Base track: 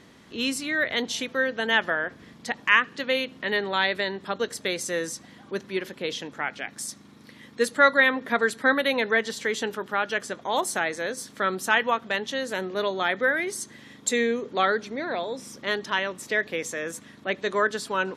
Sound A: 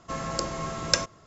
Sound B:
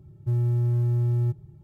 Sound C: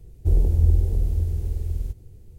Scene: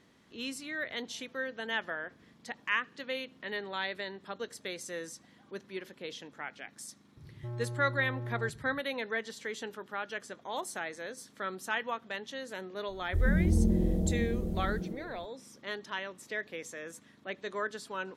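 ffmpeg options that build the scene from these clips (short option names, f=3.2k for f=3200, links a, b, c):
-filter_complex "[0:a]volume=-11.5dB[a];[2:a]asoftclip=type=tanh:threshold=-34.5dB[b];[3:a]asplit=6[c][d][e][f][g][h];[d]adelay=121,afreqshift=140,volume=-3dB[i];[e]adelay=242,afreqshift=280,volume=-10.5dB[j];[f]adelay=363,afreqshift=420,volume=-18.1dB[k];[g]adelay=484,afreqshift=560,volume=-25.6dB[l];[h]adelay=605,afreqshift=700,volume=-33.1dB[m];[c][i][j][k][l][m]amix=inputs=6:normalize=0[n];[b]atrim=end=1.63,asetpts=PTS-STARTPTS,volume=-3dB,afade=t=in:d=0.004:c=hsin,afade=t=out:st=1.626:d=0.004:c=hsin,adelay=7170[o];[n]atrim=end=2.38,asetpts=PTS-STARTPTS,volume=-10dB,afade=t=in:d=0.004:c=hsin,afade=t=out:st=2.376:d=0.004:c=hsin,adelay=12880[p];[a][o][p]amix=inputs=3:normalize=0"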